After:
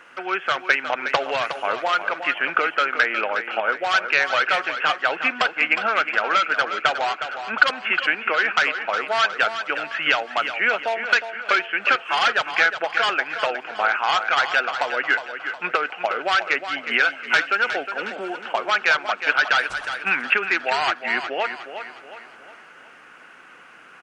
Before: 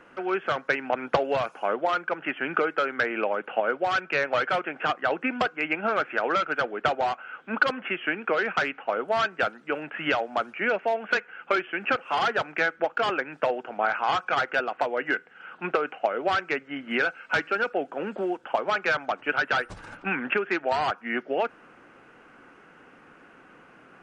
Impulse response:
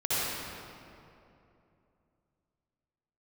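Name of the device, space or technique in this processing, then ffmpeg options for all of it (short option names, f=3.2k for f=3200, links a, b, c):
compressed reverb return: -filter_complex "[0:a]tiltshelf=f=760:g=-9,asplit=2[a][b];[1:a]atrim=start_sample=2205[c];[b][c]afir=irnorm=-1:irlink=0,acompressor=threshold=-28dB:ratio=6,volume=-23.5dB[d];[a][d]amix=inputs=2:normalize=0,aecho=1:1:362|724|1086|1448|1810:0.335|0.144|0.0619|0.0266|0.0115,volume=1.5dB"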